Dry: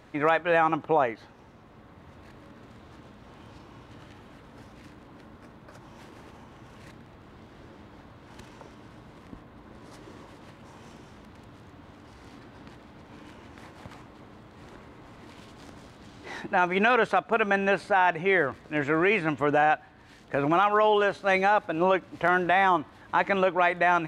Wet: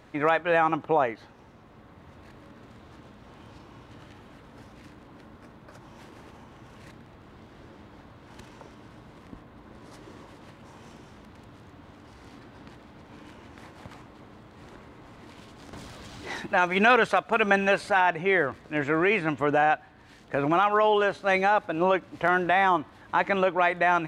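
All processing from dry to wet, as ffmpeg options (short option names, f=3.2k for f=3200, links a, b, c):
-filter_complex "[0:a]asettb=1/sr,asplit=3[a][b][c];[a]atrim=end=15.734[d];[b]atrim=start=15.73:end=18.01,asetpts=PTS-STARTPTS,afade=t=in:d=0.004:c=qsin,afade=t=out:st=2.276:d=0.004:c=qsin,acompressor=mode=upward:threshold=-37dB:ratio=2.5:attack=3.2:release=140:knee=2.83:detection=peak,highshelf=f=2.4k:g=6,aphaser=in_gain=1:out_gain=1:delay=1.9:decay=0.28:speed=1.7:type=sinusoidal[e];[c]atrim=start=18.006[f];[d][e]acrossfade=d=0.004:c1=hsin:c2=qsin[g];[g][f]acrossfade=d=0.004:c1=qsin:c2=hsin"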